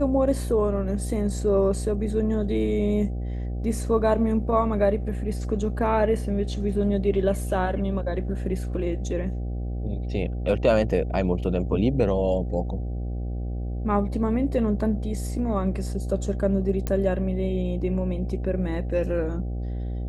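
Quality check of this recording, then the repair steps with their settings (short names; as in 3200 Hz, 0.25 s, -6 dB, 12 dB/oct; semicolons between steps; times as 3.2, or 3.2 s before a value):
buzz 60 Hz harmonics 13 -29 dBFS
16.87 pop -13 dBFS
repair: de-click; de-hum 60 Hz, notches 13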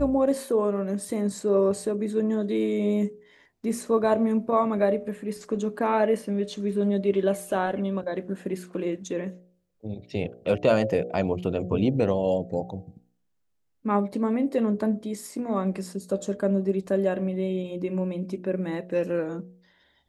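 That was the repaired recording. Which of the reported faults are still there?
none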